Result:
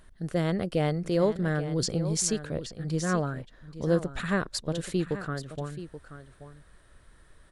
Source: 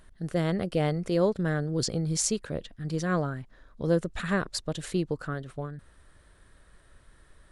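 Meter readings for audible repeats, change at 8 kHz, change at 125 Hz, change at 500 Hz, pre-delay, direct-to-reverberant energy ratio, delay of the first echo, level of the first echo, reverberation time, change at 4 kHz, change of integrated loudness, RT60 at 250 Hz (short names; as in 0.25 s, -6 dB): 1, 0.0 dB, +0.5 dB, 0.0 dB, none, none, 0.83 s, -12.5 dB, none, 0.0 dB, +0.5 dB, none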